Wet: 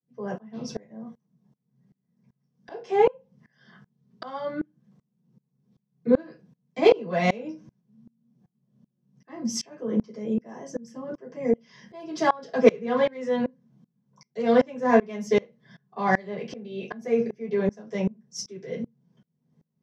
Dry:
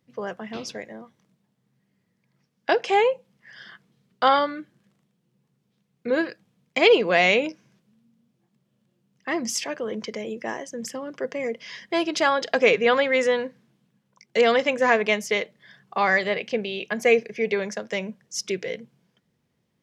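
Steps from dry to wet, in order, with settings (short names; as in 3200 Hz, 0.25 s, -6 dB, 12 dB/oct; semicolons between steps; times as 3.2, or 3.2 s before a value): in parallel at -8.5 dB: soft clip -20 dBFS, distortion -9 dB; on the sum: reverb RT60 0.20 s, pre-delay 3 ms, DRR -10 dB; dB-ramp tremolo swelling 2.6 Hz, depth 27 dB; gain -18 dB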